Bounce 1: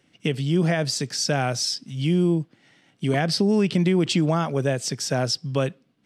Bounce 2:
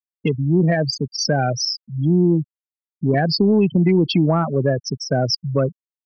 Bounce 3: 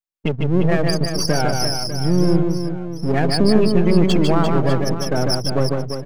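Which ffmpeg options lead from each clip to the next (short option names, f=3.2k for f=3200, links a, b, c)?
-af "afftfilt=real='re*gte(hypot(re,im),0.126)':imag='im*gte(hypot(re,im),0.126)':win_size=1024:overlap=0.75,acontrast=72,volume=-1.5dB"
-filter_complex "[0:a]aeval=exprs='if(lt(val(0),0),0.251*val(0),val(0))':c=same,asplit=2[a][b];[b]aecho=0:1:150|345|598.5|928|1356:0.631|0.398|0.251|0.158|0.1[c];[a][c]amix=inputs=2:normalize=0,volume=2dB"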